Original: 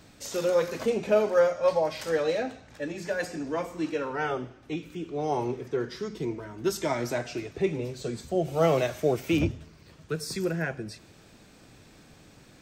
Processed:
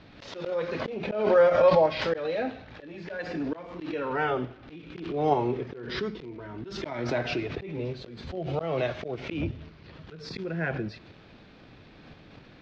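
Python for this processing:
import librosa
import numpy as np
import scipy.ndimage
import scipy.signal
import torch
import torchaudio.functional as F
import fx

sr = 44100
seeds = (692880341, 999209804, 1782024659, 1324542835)

p1 = fx.auto_swell(x, sr, attack_ms=358.0)
p2 = fx.dmg_crackle(p1, sr, seeds[0], per_s=190.0, level_db=-46.0)
p3 = fx.level_steps(p2, sr, step_db=13)
p4 = p2 + (p3 * 10.0 ** (-0.5 / 20.0))
p5 = scipy.signal.sosfilt(scipy.signal.cheby2(4, 50, 9300.0, 'lowpass', fs=sr, output='sos'), p4)
y = fx.pre_swell(p5, sr, db_per_s=57.0)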